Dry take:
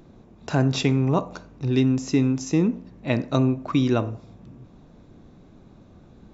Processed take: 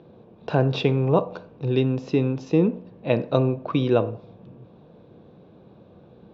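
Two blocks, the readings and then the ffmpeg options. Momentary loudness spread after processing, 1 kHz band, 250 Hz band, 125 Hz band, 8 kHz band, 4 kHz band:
10 LU, +1.5 dB, −2.5 dB, −0.5 dB, can't be measured, −2.0 dB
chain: -af "highpass=120,equalizer=frequency=260:width_type=q:width=4:gain=-7,equalizer=frequency=490:width_type=q:width=4:gain=8,equalizer=frequency=1300:width_type=q:width=4:gain=-4,equalizer=frequency=2000:width_type=q:width=4:gain=-9,lowpass=frequency=3700:width=0.5412,lowpass=frequency=3700:width=1.3066,volume=2dB"

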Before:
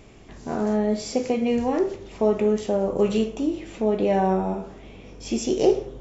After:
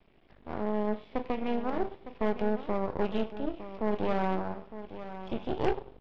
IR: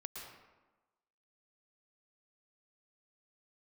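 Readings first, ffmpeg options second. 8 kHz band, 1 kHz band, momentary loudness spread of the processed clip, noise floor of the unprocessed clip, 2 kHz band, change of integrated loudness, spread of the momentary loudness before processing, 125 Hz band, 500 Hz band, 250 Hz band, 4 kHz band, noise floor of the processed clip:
can't be measured, −5.0 dB, 12 LU, −45 dBFS, −3.0 dB, −9.5 dB, 9 LU, −7.5 dB, −10.0 dB, −9.5 dB, −10.5 dB, −61 dBFS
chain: -af "equalizer=frequency=89:width_type=o:width=1:gain=-7.5,aresample=8000,aresample=44100,aresample=11025,aeval=exprs='max(val(0),0)':channel_layout=same,aresample=44100,aeval=exprs='0.422*(cos(1*acos(clip(val(0)/0.422,-1,1)))-cos(1*PI/2))+0.106*(cos(3*acos(clip(val(0)/0.422,-1,1)))-cos(3*PI/2))+0.0266*(cos(5*acos(clip(val(0)/0.422,-1,1)))-cos(5*PI/2))+0.0596*(cos(6*acos(clip(val(0)/0.422,-1,1)))-cos(6*PI/2))':channel_layout=same,aecho=1:1:908:0.237,volume=-6dB"

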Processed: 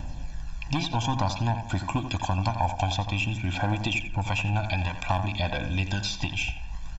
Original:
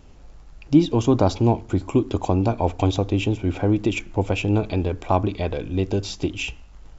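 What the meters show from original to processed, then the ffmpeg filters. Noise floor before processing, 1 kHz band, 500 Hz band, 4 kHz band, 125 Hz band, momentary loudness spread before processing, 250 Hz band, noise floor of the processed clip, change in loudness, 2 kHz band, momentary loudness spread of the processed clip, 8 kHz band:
−45 dBFS, −1.0 dB, −13.0 dB, +2.0 dB, −4.0 dB, 7 LU, −11.5 dB, −37 dBFS, −5.5 dB, +3.0 dB, 4 LU, can't be measured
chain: -filter_complex "[0:a]aeval=exprs='0.668*(cos(1*acos(clip(val(0)/0.668,-1,1)))-cos(1*PI/2))+0.106*(cos(2*acos(clip(val(0)/0.668,-1,1)))-cos(2*PI/2))+0.0668*(cos(4*acos(clip(val(0)/0.668,-1,1)))-cos(4*PI/2))':channel_layout=same,aphaser=in_gain=1:out_gain=1:delay=1.4:decay=0.42:speed=0.54:type=triangular,aecho=1:1:1.2:0.98,acrossover=split=960|5600[link_01][link_02][link_03];[link_01]acompressor=threshold=-36dB:ratio=4[link_04];[link_02]acompressor=threshold=-36dB:ratio=4[link_05];[link_03]acompressor=threshold=-56dB:ratio=4[link_06];[link_04][link_05][link_06]amix=inputs=3:normalize=0,asplit=2[link_07][link_08];[link_08]adelay=87,lowpass=frequency=2400:poles=1,volume=-8.5dB,asplit=2[link_09][link_10];[link_10]adelay=87,lowpass=frequency=2400:poles=1,volume=0.42,asplit=2[link_11][link_12];[link_12]adelay=87,lowpass=frequency=2400:poles=1,volume=0.42,asplit=2[link_13][link_14];[link_14]adelay=87,lowpass=frequency=2400:poles=1,volume=0.42,asplit=2[link_15][link_16];[link_16]adelay=87,lowpass=frequency=2400:poles=1,volume=0.42[link_17];[link_09][link_11][link_13][link_15][link_17]amix=inputs=5:normalize=0[link_18];[link_07][link_18]amix=inputs=2:normalize=0,volume=6dB"

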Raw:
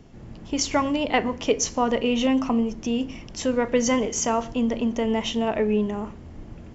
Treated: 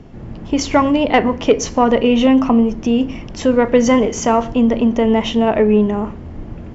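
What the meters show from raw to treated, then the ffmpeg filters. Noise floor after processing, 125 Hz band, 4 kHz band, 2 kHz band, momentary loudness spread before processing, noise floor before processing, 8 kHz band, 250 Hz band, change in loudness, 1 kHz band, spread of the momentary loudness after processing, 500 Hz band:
−32 dBFS, +10.0 dB, +4.5 dB, +6.5 dB, 11 LU, −42 dBFS, can't be measured, +10.0 dB, +9.0 dB, +9.0 dB, 11 LU, +9.5 dB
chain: -af "aemphasis=mode=reproduction:type=75kf,acontrast=84,volume=3dB"

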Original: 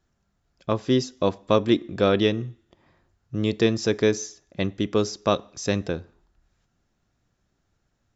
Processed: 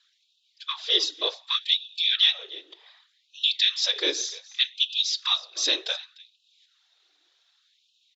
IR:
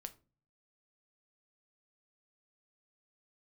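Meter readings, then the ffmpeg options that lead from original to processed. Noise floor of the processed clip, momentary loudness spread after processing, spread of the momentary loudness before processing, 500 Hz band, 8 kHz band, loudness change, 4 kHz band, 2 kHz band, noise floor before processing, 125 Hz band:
−70 dBFS, 12 LU, 11 LU, −15.5 dB, can't be measured, +1.0 dB, +13.0 dB, +1.0 dB, −73 dBFS, below −40 dB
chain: -filter_complex "[0:a]asoftclip=type=tanh:threshold=-6dB,alimiter=limit=-19dB:level=0:latency=1:release=445,highpass=220,equalizer=frequency=540:width_type=o:width=0.49:gain=-5.5,aecho=1:1:298:0.1,asplit=2[link_01][link_02];[1:a]atrim=start_sample=2205,afade=type=out:start_time=0.19:duration=0.01,atrim=end_sample=8820,lowshelf=frequency=390:gain=9[link_03];[link_02][link_03]afir=irnorm=-1:irlink=0,volume=3.5dB[link_04];[link_01][link_04]amix=inputs=2:normalize=0,afftfilt=real='hypot(re,im)*cos(2*PI*random(0))':imag='hypot(re,im)*sin(2*PI*random(1))':win_size=512:overlap=0.75,lowpass=frequency=3700:width_type=q:width=5.2,crystalizer=i=6:c=0,afftfilt=real='re*gte(b*sr/1024,280*pow(2500/280,0.5+0.5*sin(2*PI*0.66*pts/sr)))':imag='im*gte(b*sr/1024,280*pow(2500/280,0.5+0.5*sin(2*PI*0.66*pts/sr)))':win_size=1024:overlap=0.75"

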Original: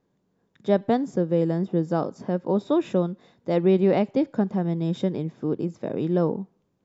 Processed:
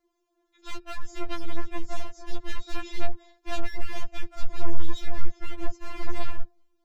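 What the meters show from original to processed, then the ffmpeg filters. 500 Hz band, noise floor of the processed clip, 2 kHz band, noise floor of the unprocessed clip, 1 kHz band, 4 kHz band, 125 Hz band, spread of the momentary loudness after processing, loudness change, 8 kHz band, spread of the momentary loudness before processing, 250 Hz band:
−18.0 dB, −74 dBFS, +1.5 dB, −72 dBFS, −7.5 dB, +2.0 dB, −10.5 dB, 6 LU, −15.0 dB, can't be measured, 8 LU, −19.0 dB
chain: -af "acompressor=threshold=-22dB:ratio=8,aeval=exprs='(tanh(11.2*val(0)+0.5)-tanh(0.5))/11.2':channel_layout=same,highshelf=frequency=5400:gain=3.5,aeval=exprs='0.0188*(abs(mod(val(0)/0.0188+3,4)-2)-1)':channel_layout=same,asubboost=boost=10.5:cutoff=55,afftfilt=real='re*4*eq(mod(b,16),0)':imag='im*4*eq(mod(b,16),0)':win_size=2048:overlap=0.75,volume=4dB"

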